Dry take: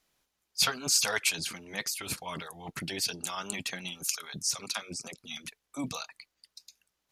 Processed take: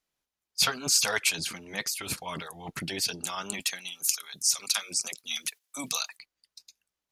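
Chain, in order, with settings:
noise gate −51 dBFS, range −9 dB
0:03.60–0:06.19: spectral tilt +3.5 dB per octave
automatic gain control gain up to 3 dB
level −1 dB

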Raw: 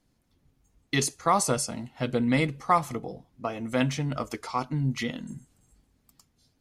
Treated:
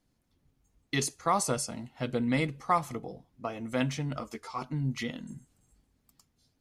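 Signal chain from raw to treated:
0:04.20–0:04.62: string-ensemble chorus
level −4 dB

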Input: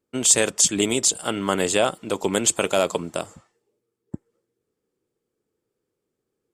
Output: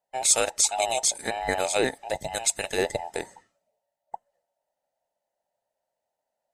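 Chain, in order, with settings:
frequency inversion band by band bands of 1,000 Hz
0:02.17–0:02.78: parametric band 520 Hz −7 dB 3 octaves
level −4 dB

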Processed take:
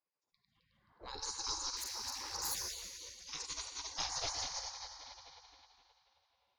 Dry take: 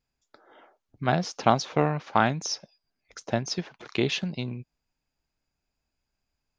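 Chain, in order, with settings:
feedback delay that plays each chunk backwards 132 ms, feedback 74%, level −2 dB
low-pass that shuts in the quiet parts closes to 1,400 Hz, open at −21 dBFS
0:00.82–0:02.55: gain on a spectral selection 750–3,800 Hz −15 dB
reverb reduction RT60 0.9 s
in parallel at +1 dB: downward compressor 12 to 1, threshold −34 dBFS, peak gain reduction 17.5 dB
0:01.76–0:02.55: on the sum: gain into a clipping stage and back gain 24.5 dB
0:03.84–0:04.29: thirty-one-band graphic EQ 200 Hz +8 dB, 500 Hz +8 dB, 800 Hz −4 dB, 1,250 Hz +9 dB
on a send at −4.5 dB: convolution reverb RT60 2.8 s, pre-delay 15 ms
on the sum: gate on every frequency bin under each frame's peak −25 dB weak
flat-topped bell 2,100 Hz −10.5 dB
level +2 dB

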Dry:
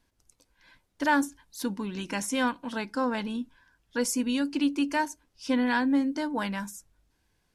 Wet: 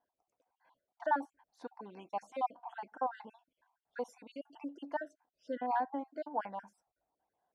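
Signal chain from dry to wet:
time-frequency cells dropped at random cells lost 44%
resonant band-pass 740 Hz, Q 5.1
level +5.5 dB

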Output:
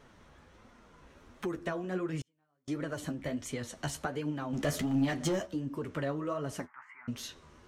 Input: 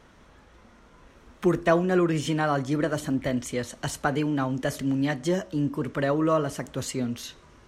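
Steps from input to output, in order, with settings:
0:06.65–0:07.08: elliptic band-pass filter 900–2,100 Hz, stop band 40 dB
downward compressor 6 to 1, threshold −28 dBFS, peak gain reduction 12 dB
0:04.53–0:05.46: leveller curve on the samples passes 2
flanger 1.4 Hz, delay 6.7 ms, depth 7.9 ms, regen +33%
0:02.21–0:02.68: gate with flip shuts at −32 dBFS, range −42 dB

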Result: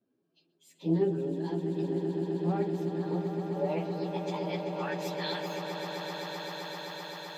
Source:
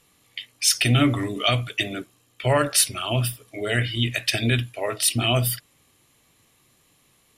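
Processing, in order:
phase-vocoder pitch shift without resampling +5.5 semitones
band-pass filter sweep 300 Hz → 6,700 Hz, 0:02.92–0:06.63
echo that builds up and dies away 129 ms, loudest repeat 8, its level −9 dB
highs frequency-modulated by the lows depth 0.13 ms

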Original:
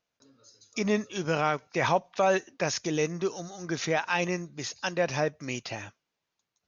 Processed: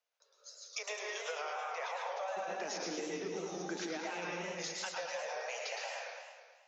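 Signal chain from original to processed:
Butterworth high-pass 460 Hz 96 dB per octave, from 0:02.36 180 Hz, from 0:04.30 490 Hz
noise gate −58 dBFS, range −10 dB
convolution reverb RT60 0.80 s, pre-delay 112 ms, DRR 2 dB
brickwall limiter −21 dBFS, peak gain reduction 9.5 dB
downward compressor 8 to 1, threshold −43 dBFS, peak gain reduction 17.5 dB
flanger 1.5 Hz, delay 2 ms, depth 7.2 ms, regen −81%
feedback echo with a swinging delay time 108 ms, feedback 63%, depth 177 cents, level −6 dB
level +8.5 dB

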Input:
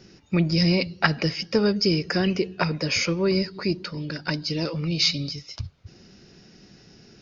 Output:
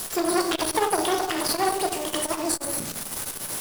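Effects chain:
spike at every zero crossing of −13.5 dBFS
low-pass filter 3,600 Hz 6 dB per octave
low-shelf EQ 180 Hz −6 dB
in parallel at −10.5 dB: sample-and-hold swept by an LFO 26×, swing 60% 4 Hz
on the sum: wrong playback speed 7.5 ips tape played at 15 ips
on a send at −2.5 dB: convolution reverb RT60 0.85 s, pre-delay 19 ms
on the sum: saturating transformer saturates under 2,000 Hz

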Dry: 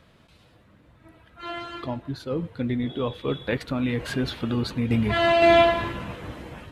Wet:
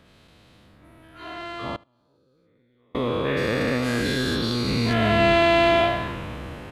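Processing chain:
every bin's largest magnitude spread in time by 480 ms
0:01.75–0:02.95: gate with flip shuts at −19 dBFS, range −38 dB
single-tap delay 75 ms −24 dB
level −4.5 dB

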